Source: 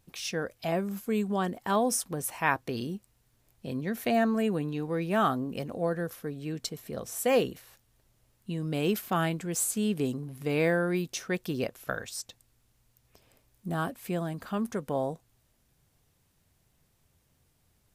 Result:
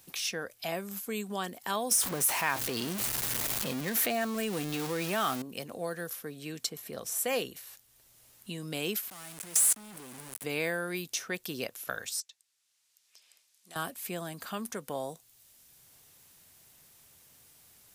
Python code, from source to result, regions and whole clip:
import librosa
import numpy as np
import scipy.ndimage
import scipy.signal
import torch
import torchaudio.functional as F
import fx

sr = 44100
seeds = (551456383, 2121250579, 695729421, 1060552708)

y = fx.chain(x, sr, fx.zero_step(step_db=-34.5),
    fx.env_flatten(amount_pct=50), at=(1.91, 5.42))
y = fx.chain(y, sr, fx.quant_companded(bits=2),
    fx.peak_eq(hz=9600.0, db=10.5, octaves=0.71),
    fx.level_steps(step_db=23), at=(9.1, 10.44))
y = fx.chain(y, sr, fx.lowpass(hz=5200.0, slope=12),
    fx.differentiator(), at=(12.2, 13.76))
y = fx.tilt_eq(y, sr, slope=2.5)
y = fx.band_squash(y, sr, depth_pct=40)
y = y * 10.0 ** (-4.0 / 20.0)